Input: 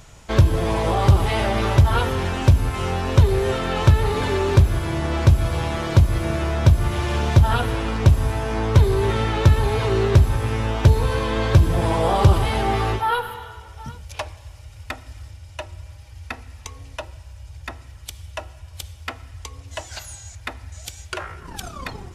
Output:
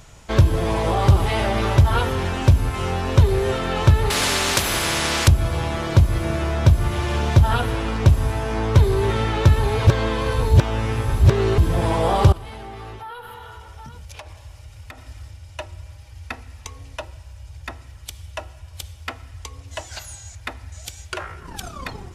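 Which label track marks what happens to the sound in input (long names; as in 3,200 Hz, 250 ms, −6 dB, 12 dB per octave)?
4.100000	5.280000	every bin compressed towards the loudest bin 4 to 1
9.870000	11.580000	reverse
12.320000	15.060000	downward compressor 5 to 1, threshold −34 dBFS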